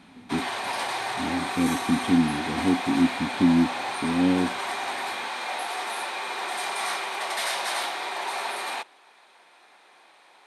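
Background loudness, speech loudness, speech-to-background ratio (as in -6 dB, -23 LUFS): -29.5 LUFS, -25.5 LUFS, 4.0 dB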